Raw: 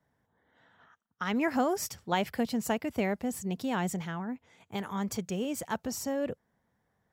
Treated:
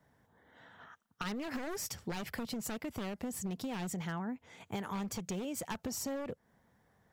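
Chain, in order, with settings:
wavefolder on the positive side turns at −29.5 dBFS
brickwall limiter −27 dBFS, peak gain reduction 9 dB
downward compressor 6 to 1, threshold −42 dBFS, peak gain reduction 11 dB
level +6 dB

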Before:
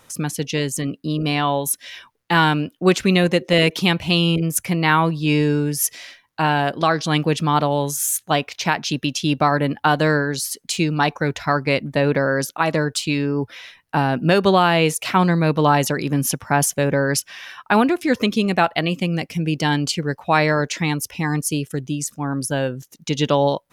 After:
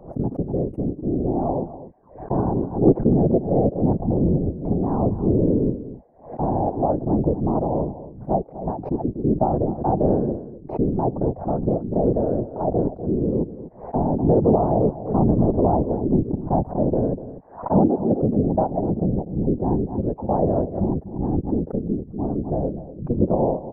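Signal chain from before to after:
elliptic low-pass filter 730 Hz, stop band 80 dB
dynamic equaliser 550 Hz, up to −3 dB, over −35 dBFS, Q 6.7
random phases in short frames
slap from a distant wall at 42 metres, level −14 dB
background raised ahead of every attack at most 130 dB per second

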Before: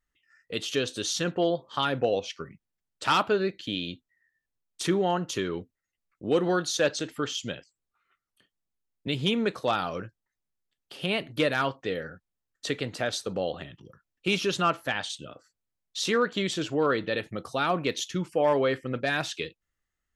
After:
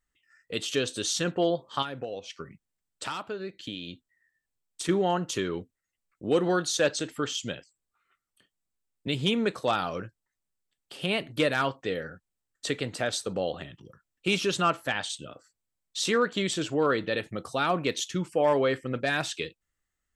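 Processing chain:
parametric band 8,000 Hz +7.5 dB 0.27 octaves
0:01.82–0:04.89: downward compressor 4 to 1, threshold −34 dBFS, peak gain reduction 12.5 dB

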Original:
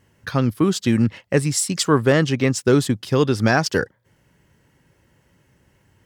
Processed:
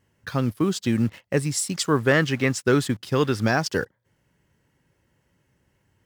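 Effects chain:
in parallel at −6 dB: bit reduction 6 bits
0:01.99–0:03.42: on the sum: dynamic equaliser 1,700 Hz, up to +7 dB, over −31 dBFS, Q 1
level −8 dB

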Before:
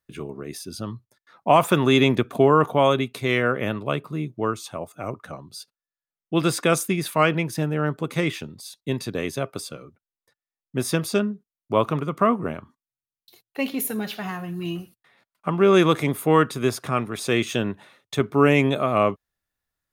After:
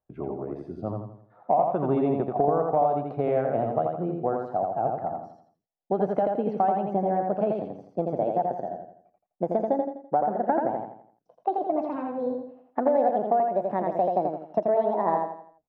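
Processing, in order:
gliding playback speed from 95% → 159%
low-pass with resonance 730 Hz, resonance Q 4.9
downward compressor 6 to 1, threshold −19 dBFS, peak gain reduction 16.5 dB
repeating echo 84 ms, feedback 39%, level −3.5 dB
level −2.5 dB

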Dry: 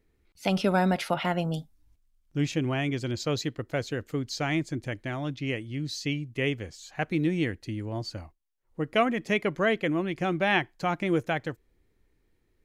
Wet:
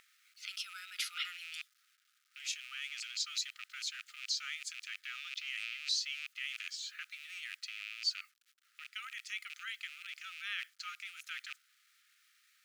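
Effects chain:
loose part that buzzes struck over −38 dBFS, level −30 dBFS
low-pass that shuts in the quiet parts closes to 2,600 Hz, open at −23 dBFS
parametric band 1,600 Hz −11.5 dB 1.2 octaves
reversed playback
downward compressor 8 to 1, threshold −34 dBFS, peak gain reduction 14 dB
reversed playback
brickwall limiter −34.5 dBFS, peak gain reduction 11 dB
in parallel at −1.5 dB: upward compression, threshold −44 dBFS
on the sum: bit reduction 12 bits
linear-phase brick-wall high-pass 1,200 Hz
level +6 dB

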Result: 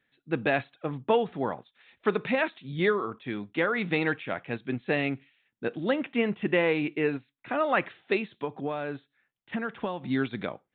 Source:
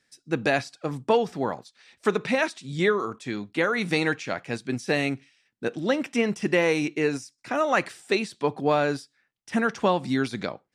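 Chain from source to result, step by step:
downsampling to 8,000 Hz
0:08.18–0:10.04: downward compressor 6 to 1, threshold −26 dBFS, peak gain reduction 9.5 dB
level −2.5 dB

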